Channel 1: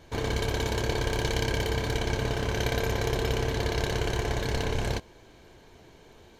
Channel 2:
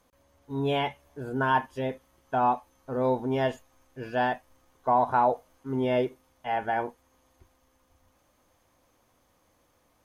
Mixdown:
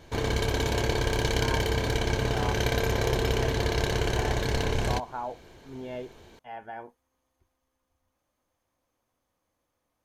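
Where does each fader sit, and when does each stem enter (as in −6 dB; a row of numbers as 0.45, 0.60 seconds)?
+1.5, −12.0 decibels; 0.00, 0.00 seconds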